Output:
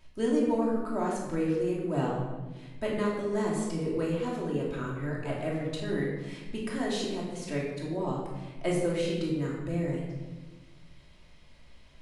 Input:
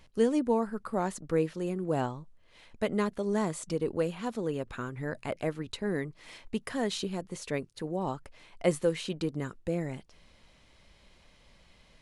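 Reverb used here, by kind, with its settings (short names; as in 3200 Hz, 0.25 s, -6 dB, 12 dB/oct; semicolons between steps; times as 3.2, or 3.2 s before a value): shoebox room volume 830 m³, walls mixed, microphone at 2.8 m; gain -5.5 dB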